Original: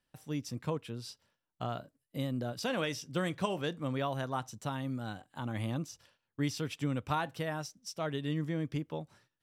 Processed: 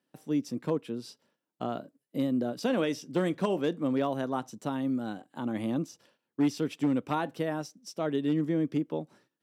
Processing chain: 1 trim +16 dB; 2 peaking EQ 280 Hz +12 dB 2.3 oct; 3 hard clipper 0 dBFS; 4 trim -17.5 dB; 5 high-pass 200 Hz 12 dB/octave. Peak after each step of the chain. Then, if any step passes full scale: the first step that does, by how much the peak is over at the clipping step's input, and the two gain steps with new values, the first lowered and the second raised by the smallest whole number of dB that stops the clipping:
-1.0 dBFS, +4.5 dBFS, 0.0 dBFS, -17.5 dBFS, -14.5 dBFS; step 2, 4.5 dB; step 1 +11 dB, step 4 -12.5 dB

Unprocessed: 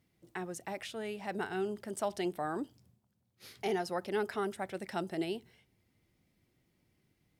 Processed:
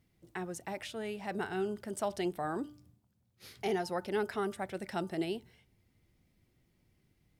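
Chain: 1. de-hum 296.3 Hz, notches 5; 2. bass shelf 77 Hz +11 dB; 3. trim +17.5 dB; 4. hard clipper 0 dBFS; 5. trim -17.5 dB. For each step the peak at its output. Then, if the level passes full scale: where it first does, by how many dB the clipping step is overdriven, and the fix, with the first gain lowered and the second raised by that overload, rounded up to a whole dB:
-21.5 dBFS, -22.0 dBFS, -4.5 dBFS, -4.5 dBFS, -22.0 dBFS; nothing clips

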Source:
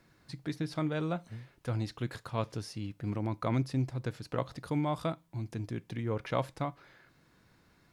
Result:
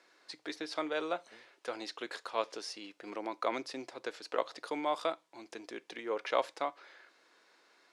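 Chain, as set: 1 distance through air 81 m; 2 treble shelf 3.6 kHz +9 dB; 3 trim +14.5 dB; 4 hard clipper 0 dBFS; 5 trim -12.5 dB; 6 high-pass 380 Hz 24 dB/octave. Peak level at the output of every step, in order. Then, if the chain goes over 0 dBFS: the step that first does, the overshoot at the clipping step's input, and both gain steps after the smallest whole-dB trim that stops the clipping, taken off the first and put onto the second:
-18.0 dBFS, -17.0 dBFS, -2.5 dBFS, -2.5 dBFS, -15.0 dBFS, -15.5 dBFS; nothing clips

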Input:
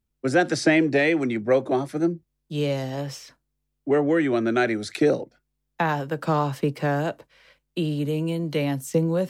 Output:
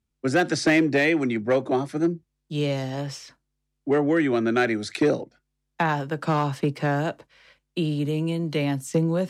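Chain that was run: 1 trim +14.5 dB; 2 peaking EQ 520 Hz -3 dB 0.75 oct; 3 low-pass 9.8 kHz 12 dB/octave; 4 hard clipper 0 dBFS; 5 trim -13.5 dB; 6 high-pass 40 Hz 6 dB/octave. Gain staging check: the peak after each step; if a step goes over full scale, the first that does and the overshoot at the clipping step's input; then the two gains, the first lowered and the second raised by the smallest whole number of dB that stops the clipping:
+7.0 dBFS, +6.5 dBFS, +6.5 dBFS, 0.0 dBFS, -13.5 dBFS, -12.0 dBFS; step 1, 6.5 dB; step 1 +7.5 dB, step 5 -6.5 dB

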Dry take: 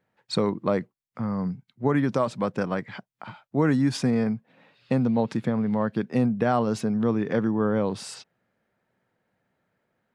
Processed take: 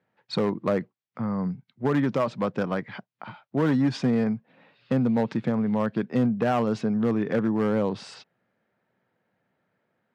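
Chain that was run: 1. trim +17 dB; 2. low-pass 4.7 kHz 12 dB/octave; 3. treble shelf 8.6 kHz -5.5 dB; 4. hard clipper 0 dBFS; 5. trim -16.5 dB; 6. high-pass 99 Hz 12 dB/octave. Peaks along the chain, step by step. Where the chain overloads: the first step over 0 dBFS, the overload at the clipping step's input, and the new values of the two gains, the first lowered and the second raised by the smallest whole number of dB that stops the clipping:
+6.0 dBFS, +6.0 dBFS, +6.0 dBFS, 0.0 dBFS, -16.5 dBFS, -12.5 dBFS; step 1, 6.0 dB; step 1 +11 dB, step 5 -10.5 dB

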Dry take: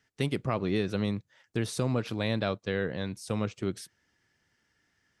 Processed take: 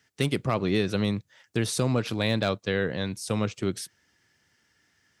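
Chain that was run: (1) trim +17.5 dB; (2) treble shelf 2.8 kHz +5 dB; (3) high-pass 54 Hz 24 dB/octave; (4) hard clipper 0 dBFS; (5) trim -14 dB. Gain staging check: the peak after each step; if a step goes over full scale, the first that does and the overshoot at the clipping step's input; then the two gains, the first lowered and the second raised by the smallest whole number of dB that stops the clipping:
+2.5 dBFS, +3.5 dBFS, +4.0 dBFS, 0.0 dBFS, -14.0 dBFS; step 1, 4.0 dB; step 1 +13.5 dB, step 5 -10 dB

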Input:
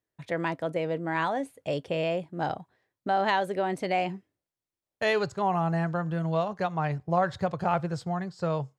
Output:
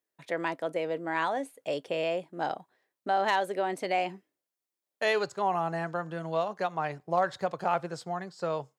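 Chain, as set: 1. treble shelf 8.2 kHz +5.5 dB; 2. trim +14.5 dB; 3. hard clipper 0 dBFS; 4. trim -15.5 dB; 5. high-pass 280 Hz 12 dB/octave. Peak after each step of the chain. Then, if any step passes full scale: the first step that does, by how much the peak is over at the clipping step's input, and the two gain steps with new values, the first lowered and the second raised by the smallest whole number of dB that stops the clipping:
-11.0 dBFS, +3.5 dBFS, 0.0 dBFS, -15.5 dBFS, -14.0 dBFS; step 2, 3.5 dB; step 2 +10.5 dB, step 4 -11.5 dB

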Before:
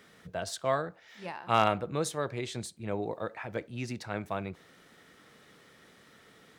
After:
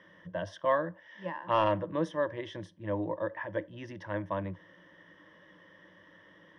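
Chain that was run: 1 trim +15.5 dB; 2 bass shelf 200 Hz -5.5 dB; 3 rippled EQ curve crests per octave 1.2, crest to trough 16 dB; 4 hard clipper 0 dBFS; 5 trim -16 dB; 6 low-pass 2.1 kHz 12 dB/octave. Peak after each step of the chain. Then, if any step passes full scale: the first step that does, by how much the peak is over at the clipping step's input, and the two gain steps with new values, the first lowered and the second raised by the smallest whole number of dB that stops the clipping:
+5.0 dBFS, +5.0 dBFS, +5.5 dBFS, 0.0 dBFS, -16.0 dBFS, -15.5 dBFS; step 1, 5.5 dB; step 1 +9.5 dB, step 5 -10 dB

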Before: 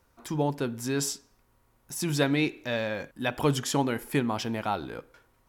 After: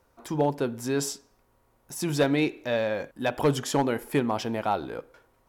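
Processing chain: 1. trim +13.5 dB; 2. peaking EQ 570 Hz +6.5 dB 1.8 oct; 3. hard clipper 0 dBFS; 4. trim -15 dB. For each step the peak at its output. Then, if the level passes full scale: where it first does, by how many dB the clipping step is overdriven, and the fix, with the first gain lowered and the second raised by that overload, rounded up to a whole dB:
+1.0 dBFS, +6.5 dBFS, 0.0 dBFS, -15.0 dBFS; step 1, 6.5 dB; step 1 +6.5 dB, step 4 -8 dB

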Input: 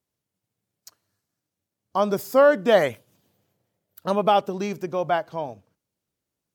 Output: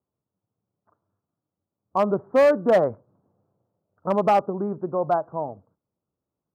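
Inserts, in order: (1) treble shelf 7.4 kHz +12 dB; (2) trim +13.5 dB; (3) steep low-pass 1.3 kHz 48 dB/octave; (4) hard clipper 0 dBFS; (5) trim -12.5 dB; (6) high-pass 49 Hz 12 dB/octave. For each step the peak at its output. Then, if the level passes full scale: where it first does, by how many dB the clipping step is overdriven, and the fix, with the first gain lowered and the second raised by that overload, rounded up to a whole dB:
-6.0 dBFS, +7.5 dBFS, +7.0 dBFS, 0.0 dBFS, -12.5 dBFS, -10.5 dBFS; step 2, 7.0 dB; step 2 +6.5 dB, step 5 -5.5 dB

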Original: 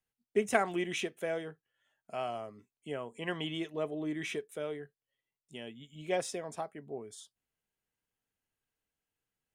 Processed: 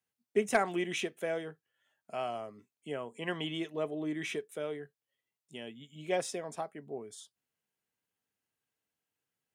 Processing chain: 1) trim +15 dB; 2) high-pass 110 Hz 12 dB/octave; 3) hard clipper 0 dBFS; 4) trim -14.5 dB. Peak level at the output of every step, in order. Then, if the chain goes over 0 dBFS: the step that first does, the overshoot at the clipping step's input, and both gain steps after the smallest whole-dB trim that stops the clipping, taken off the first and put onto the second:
+3.5 dBFS, +4.0 dBFS, 0.0 dBFS, -14.5 dBFS; step 1, 4.0 dB; step 1 +11 dB, step 4 -10.5 dB

